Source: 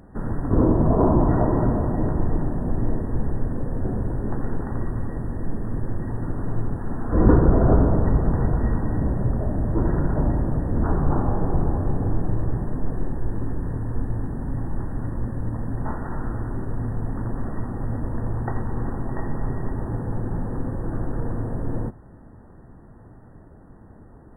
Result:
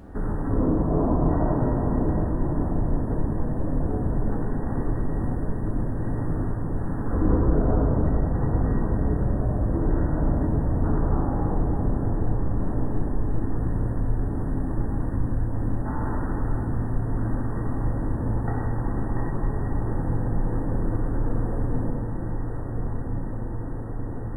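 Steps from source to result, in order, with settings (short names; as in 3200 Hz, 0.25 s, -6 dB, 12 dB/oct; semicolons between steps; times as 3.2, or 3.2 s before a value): diffused feedback echo 1.343 s, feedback 66%, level -11.5 dB; compressor 2.5:1, threshold -30 dBFS, peak gain reduction 14 dB; reverb RT60 1.8 s, pre-delay 3 ms, DRR -3 dB; gain +1.5 dB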